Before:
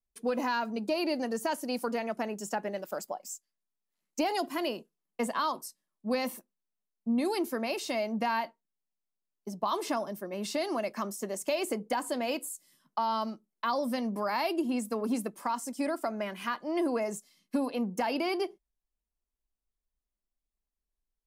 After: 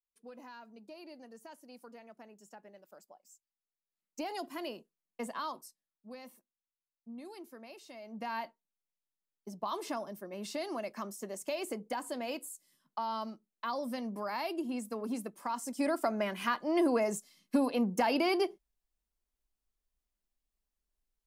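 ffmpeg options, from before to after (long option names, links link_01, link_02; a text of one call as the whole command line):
ffmpeg -i in.wav -af "volume=11.5dB,afade=type=in:start_time=3.27:duration=1.19:silence=0.251189,afade=type=out:start_time=5.51:duration=0.59:silence=0.316228,afade=type=in:start_time=8.01:duration=0.42:silence=0.251189,afade=type=in:start_time=15.41:duration=0.59:silence=0.421697" out.wav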